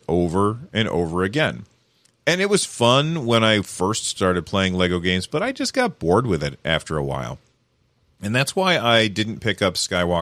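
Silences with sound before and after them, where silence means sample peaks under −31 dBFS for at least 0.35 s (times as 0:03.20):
0:01.62–0:02.27
0:07.34–0:08.23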